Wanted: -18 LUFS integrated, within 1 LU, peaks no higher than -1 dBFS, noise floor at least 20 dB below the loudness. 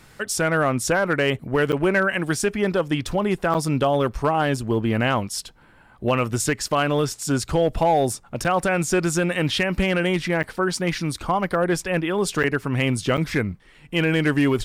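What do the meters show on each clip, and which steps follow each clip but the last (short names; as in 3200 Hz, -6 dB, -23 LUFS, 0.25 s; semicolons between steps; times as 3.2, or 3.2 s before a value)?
clipped 0.8%; flat tops at -12.0 dBFS; dropouts 6; longest dropout 8.0 ms; loudness -22.5 LUFS; peak -12.0 dBFS; loudness target -18.0 LUFS
-> clip repair -12 dBFS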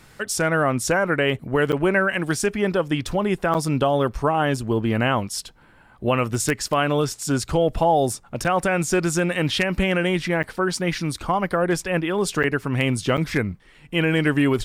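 clipped 0.0%; dropouts 6; longest dropout 8.0 ms
-> interpolate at 1.72/3.54/8.44/10.43/12.43/13.17, 8 ms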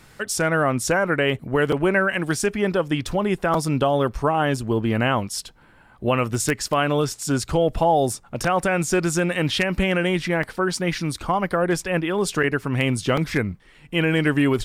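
dropouts 0; loudness -22.0 LUFS; peak -3.0 dBFS; loudness target -18.0 LUFS
-> gain +4 dB; limiter -1 dBFS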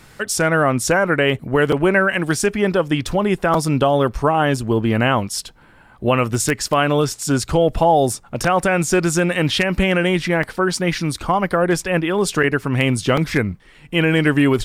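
loudness -18.0 LUFS; peak -1.0 dBFS; noise floor -48 dBFS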